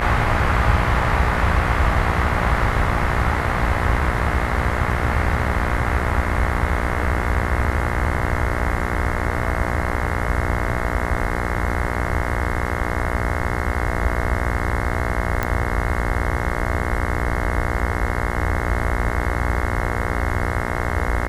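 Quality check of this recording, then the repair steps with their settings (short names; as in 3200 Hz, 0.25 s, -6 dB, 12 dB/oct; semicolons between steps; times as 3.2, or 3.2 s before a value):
buzz 60 Hz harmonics 36 -25 dBFS
15.43 pop -8 dBFS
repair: de-click; de-hum 60 Hz, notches 36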